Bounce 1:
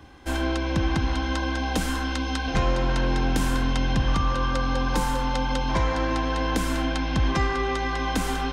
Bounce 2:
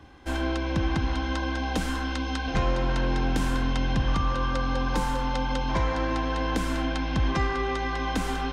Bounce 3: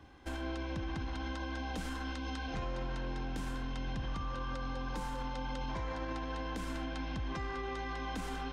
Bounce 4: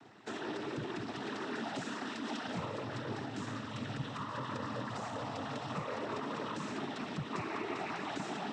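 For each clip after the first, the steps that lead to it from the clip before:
high-shelf EQ 7,600 Hz −7.5 dB; level −2 dB
brickwall limiter −24 dBFS, peak gain reduction 8 dB; level −6.5 dB
cochlear-implant simulation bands 12; level +2 dB

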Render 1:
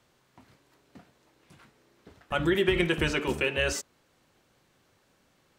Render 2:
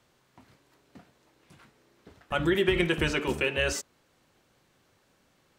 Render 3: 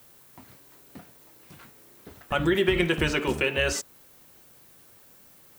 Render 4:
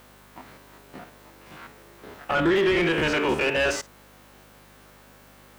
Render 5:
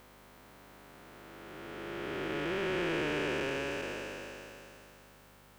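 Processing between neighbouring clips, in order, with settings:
no processing that can be heard
background noise violet −61 dBFS; in parallel at −0.5 dB: downward compressor, threshold −34 dBFS, peak gain reduction 14 dB
spectrum averaged block by block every 50 ms; mains hum 50 Hz, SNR 24 dB; mid-hump overdrive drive 20 dB, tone 1,500 Hz, clips at −11.5 dBFS
spectrum smeared in time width 1,320 ms; level −5.5 dB

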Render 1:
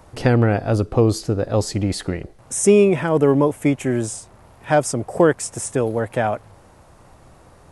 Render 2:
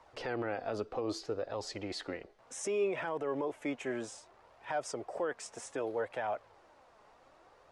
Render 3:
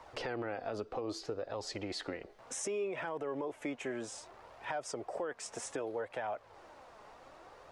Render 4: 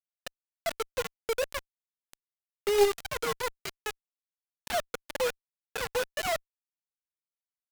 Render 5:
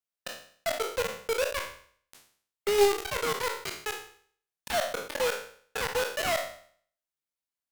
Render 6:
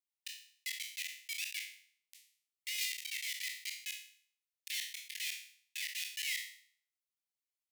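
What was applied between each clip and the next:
three-way crossover with the lows and the highs turned down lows −17 dB, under 360 Hz, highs −21 dB, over 6,000 Hz; brickwall limiter −17 dBFS, peak gain reduction 11 dB; flanger 0.64 Hz, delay 0.9 ms, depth 4 ms, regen +58%; level −5 dB
downward compressor 2.5 to 1, threshold −46 dBFS, peak gain reduction 12 dB; level +6.5 dB
three sine waves on the formant tracks; bit reduction 6 bits; harmonic generator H 2 −9 dB, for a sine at −20 dBFS; level +6 dB
peak hold with a decay on every bin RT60 0.53 s
Butterworth high-pass 1,900 Hz 96 dB per octave; level −4 dB

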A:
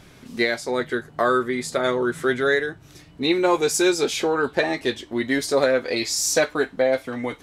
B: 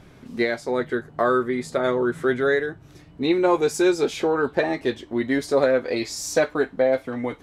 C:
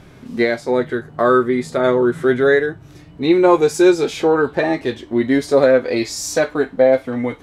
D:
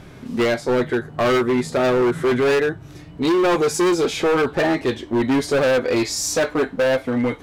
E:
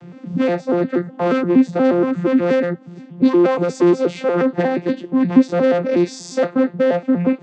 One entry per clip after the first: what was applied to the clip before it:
high-shelf EQ 2,100 Hz −10 dB; level +1 dB
harmonic and percussive parts rebalanced harmonic +6 dB; level +1.5 dB
hard clipping −17 dBFS, distortion −7 dB; level +2 dB
vocoder with an arpeggio as carrier bare fifth, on F3, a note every 119 ms; level +3.5 dB

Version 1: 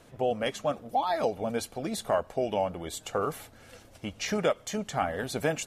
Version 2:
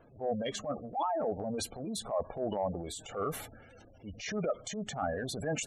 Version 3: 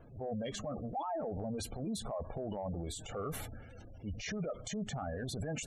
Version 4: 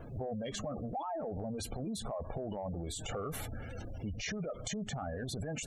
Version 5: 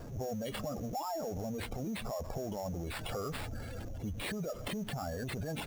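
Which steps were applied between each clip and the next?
gate on every frequency bin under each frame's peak −15 dB strong; transient designer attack −9 dB, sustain +6 dB; level −3 dB
low-shelf EQ 180 Hz +12 dB; brickwall limiter −29.5 dBFS, peak gain reduction 10 dB; level −1.5 dB
downward compressor 6 to 1, threshold −45 dBFS, peak gain reduction 10.5 dB; level +9 dB
converter with a step at zero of −53 dBFS; sample-rate reduction 6,200 Hz, jitter 0%

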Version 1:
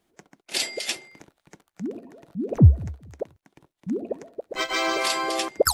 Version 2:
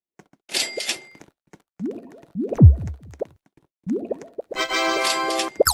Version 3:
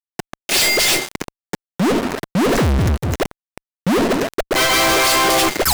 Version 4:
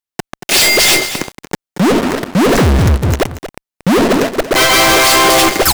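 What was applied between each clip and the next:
downward expander −47 dBFS; level +3 dB
fuzz pedal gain 39 dB, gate −42 dBFS; leveller curve on the samples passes 5; level −4 dB
single-tap delay 231 ms −12 dB; level +5.5 dB

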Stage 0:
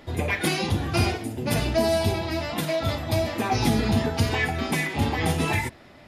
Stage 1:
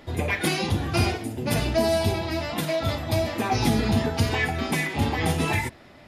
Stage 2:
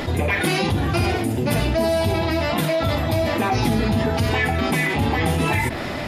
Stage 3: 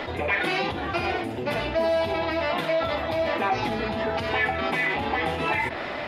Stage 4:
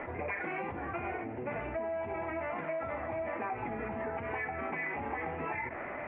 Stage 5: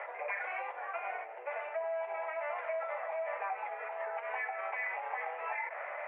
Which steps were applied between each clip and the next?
no processing that can be heard
dynamic equaliser 6,200 Hz, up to −5 dB, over −47 dBFS, Q 0.96; envelope flattener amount 70%
three-way crossover with the lows and the highs turned down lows −12 dB, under 380 Hz, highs −19 dB, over 4,200 Hz; mains-hum notches 50/100/150 Hz; level −1.5 dB
elliptic low-pass filter 2,300 Hz, stop band 50 dB; downward compressor, threshold −25 dBFS, peak gain reduction 6 dB; level −7.5 dB
Butterworth high-pass 520 Hz 48 dB per octave

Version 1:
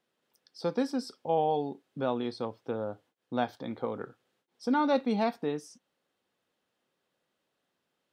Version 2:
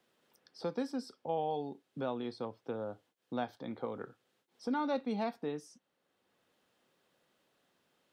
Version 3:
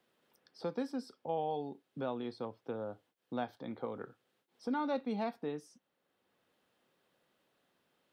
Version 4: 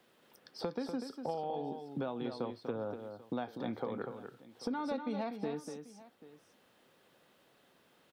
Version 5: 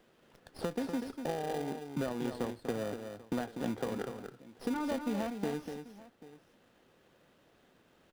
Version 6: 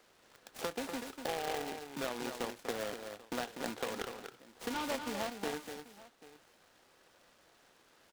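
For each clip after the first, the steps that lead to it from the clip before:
multiband upward and downward compressor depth 40%; level −6.5 dB
parametric band 6,600 Hz −4 dB 1.1 octaves; level −1 dB
downward compressor 6 to 1, threshold −43 dBFS, peak gain reduction 12.5 dB; on a send: multi-tap delay 244/789 ms −7.5/−18.5 dB; on the sum: level +8.5 dB
in parallel at −5 dB: sample-rate reduction 1,200 Hz, jitter 0%; on the sum: windowed peak hold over 5 samples
high-pass filter 1,200 Hz 6 dB per octave; short delay modulated by noise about 1,800 Hz, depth 0.076 ms; level +6 dB

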